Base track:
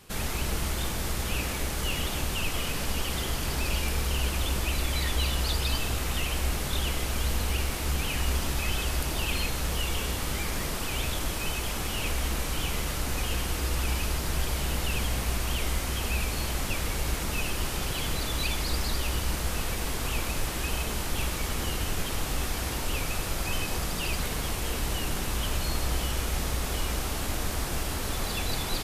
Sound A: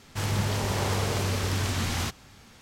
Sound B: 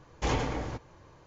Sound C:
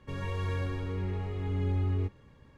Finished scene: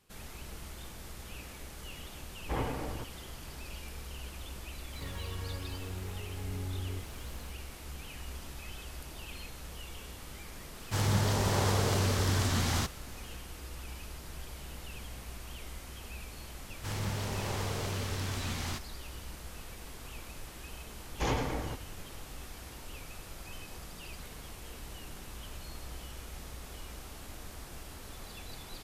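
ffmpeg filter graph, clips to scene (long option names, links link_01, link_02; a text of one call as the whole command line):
ffmpeg -i bed.wav -i cue0.wav -i cue1.wav -i cue2.wav -filter_complex "[2:a]asplit=2[link_01][link_02];[1:a]asplit=2[link_03][link_04];[0:a]volume=-15.5dB[link_05];[link_01]lowpass=2000[link_06];[3:a]aeval=exprs='val(0)+0.5*0.0133*sgn(val(0))':channel_layout=same[link_07];[link_03]equalizer=frequency=2500:width_type=o:width=0.61:gain=-4.5[link_08];[link_06]atrim=end=1.26,asetpts=PTS-STARTPTS,volume=-4.5dB,afade=type=in:duration=0.004:curve=hsin,afade=type=out:start_time=1.256:duration=0.004:curve=hsin,adelay=2270[link_09];[link_07]atrim=end=2.57,asetpts=PTS-STARTPTS,volume=-10dB,afade=type=in:duration=0.004:curve=hsin,afade=type=out:start_time=2.566:duration=0.004:curve=hsin,adelay=217413S[link_10];[link_08]atrim=end=2.61,asetpts=PTS-STARTPTS,volume=-1dB,afade=type=in:duration=0.004:curve=hsin,afade=type=out:start_time=2.606:duration=0.004:curve=hsin,adelay=10760[link_11];[link_04]atrim=end=2.61,asetpts=PTS-STARTPTS,volume=-8dB,afade=type=in:duration=0.004:curve=hsin,afade=type=out:start_time=2.606:duration=0.004:curve=hsin,adelay=735588S[link_12];[link_02]atrim=end=1.26,asetpts=PTS-STARTPTS,volume=-2dB,afade=type=in:duration=0.004:curve=hsin,afade=type=out:start_time=1.256:duration=0.004:curve=hsin,adelay=20980[link_13];[link_05][link_09][link_10][link_11][link_12][link_13]amix=inputs=6:normalize=0" out.wav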